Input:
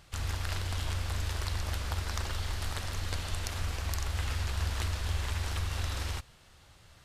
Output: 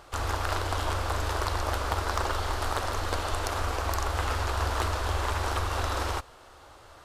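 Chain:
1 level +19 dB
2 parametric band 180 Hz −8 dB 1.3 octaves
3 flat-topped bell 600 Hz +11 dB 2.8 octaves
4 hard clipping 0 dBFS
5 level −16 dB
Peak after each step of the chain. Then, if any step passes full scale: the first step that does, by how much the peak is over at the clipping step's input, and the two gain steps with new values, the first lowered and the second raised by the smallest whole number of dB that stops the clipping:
+5.0, +4.5, +8.0, 0.0, −16.0 dBFS
step 1, 8.0 dB
step 1 +11 dB, step 5 −8 dB

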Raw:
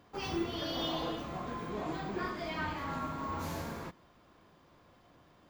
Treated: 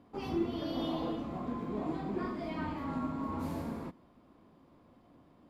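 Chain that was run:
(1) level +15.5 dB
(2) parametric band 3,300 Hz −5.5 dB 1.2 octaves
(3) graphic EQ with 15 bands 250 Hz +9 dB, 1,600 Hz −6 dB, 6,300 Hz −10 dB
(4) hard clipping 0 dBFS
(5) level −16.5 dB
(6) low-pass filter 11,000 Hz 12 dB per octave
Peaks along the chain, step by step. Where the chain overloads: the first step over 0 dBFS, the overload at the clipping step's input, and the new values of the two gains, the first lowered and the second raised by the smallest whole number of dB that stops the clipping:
−7.0, −7.0, −5.0, −5.0, −21.5, −22.0 dBFS
no step passes full scale

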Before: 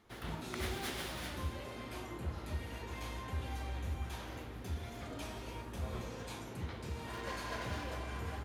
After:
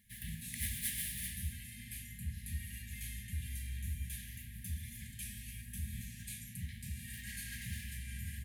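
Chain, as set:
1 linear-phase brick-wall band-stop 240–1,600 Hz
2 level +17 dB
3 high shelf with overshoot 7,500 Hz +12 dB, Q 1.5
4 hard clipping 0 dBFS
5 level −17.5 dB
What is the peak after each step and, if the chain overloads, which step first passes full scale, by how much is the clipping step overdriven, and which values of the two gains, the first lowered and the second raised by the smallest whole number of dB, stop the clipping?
−27.5, −10.5, −5.0, −5.0, −22.5 dBFS
no step passes full scale

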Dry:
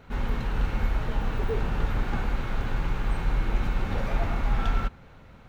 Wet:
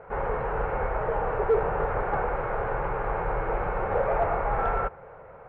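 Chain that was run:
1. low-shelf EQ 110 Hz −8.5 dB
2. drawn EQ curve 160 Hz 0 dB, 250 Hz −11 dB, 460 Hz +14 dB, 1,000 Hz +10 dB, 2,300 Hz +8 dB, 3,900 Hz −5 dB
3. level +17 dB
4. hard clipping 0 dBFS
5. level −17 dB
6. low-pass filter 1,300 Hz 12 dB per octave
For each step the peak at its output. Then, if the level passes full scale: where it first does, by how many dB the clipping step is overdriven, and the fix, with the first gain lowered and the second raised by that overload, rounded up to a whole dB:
−18.0, −9.5, +7.5, 0.0, −17.0, −16.5 dBFS
step 3, 7.5 dB
step 3 +9 dB, step 5 −9 dB

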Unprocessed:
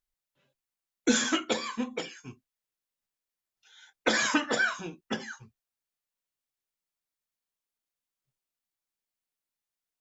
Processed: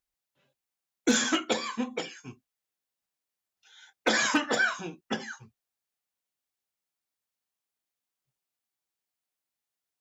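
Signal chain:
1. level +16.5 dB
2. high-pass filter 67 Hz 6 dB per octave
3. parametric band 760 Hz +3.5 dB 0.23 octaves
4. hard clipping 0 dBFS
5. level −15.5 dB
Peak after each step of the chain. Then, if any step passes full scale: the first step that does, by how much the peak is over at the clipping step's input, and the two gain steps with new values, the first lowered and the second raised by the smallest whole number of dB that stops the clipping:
+6.5, +6.0, +5.5, 0.0, −15.5 dBFS
step 1, 5.5 dB
step 1 +10.5 dB, step 5 −9.5 dB

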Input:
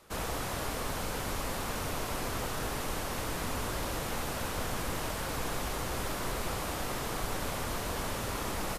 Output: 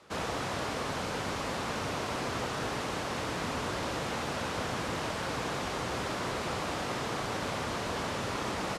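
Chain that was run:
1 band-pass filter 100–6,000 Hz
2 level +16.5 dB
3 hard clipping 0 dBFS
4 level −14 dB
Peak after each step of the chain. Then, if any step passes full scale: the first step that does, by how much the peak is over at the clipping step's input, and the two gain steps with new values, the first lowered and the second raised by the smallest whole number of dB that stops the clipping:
−22.0, −5.5, −5.5, −19.5 dBFS
no step passes full scale

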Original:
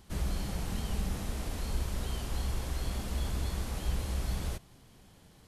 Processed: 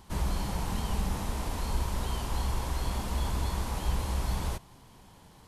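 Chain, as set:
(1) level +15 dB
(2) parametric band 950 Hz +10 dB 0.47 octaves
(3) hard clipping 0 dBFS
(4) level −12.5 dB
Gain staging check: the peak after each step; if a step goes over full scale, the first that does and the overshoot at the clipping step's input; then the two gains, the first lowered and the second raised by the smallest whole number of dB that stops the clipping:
−5.5, −5.0, −5.0, −17.5 dBFS
no step passes full scale

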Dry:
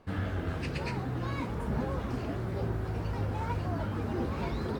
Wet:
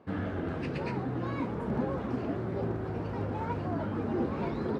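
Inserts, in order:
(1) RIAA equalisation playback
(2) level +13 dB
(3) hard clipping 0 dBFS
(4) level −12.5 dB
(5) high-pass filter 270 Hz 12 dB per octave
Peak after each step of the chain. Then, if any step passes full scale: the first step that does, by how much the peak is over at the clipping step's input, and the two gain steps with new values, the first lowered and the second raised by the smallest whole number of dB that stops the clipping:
−9.0, +4.0, 0.0, −12.5, −20.0 dBFS
step 2, 4.0 dB
step 2 +9 dB, step 4 −8.5 dB

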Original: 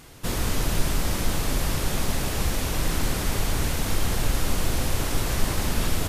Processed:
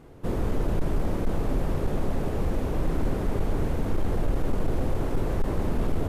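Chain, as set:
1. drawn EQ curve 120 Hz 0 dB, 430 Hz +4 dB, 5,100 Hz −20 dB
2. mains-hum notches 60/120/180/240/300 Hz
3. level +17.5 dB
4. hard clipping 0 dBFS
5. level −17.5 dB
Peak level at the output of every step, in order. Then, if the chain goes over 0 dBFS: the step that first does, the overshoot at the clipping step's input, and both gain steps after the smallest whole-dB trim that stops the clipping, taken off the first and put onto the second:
−9.5, −9.5, +8.0, 0.0, −17.5 dBFS
step 3, 8.0 dB
step 3 +9.5 dB, step 5 −9.5 dB

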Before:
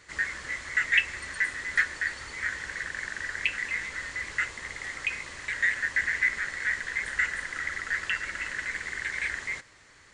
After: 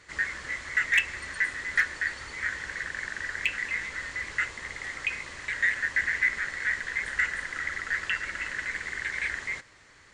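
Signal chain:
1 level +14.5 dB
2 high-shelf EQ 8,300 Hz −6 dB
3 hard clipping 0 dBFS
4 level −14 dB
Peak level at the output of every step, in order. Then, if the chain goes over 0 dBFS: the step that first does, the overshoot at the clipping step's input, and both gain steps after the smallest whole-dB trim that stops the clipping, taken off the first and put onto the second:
+6.5, +6.0, 0.0, −14.0 dBFS
step 1, 6.0 dB
step 1 +8.5 dB, step 4 −8 dB

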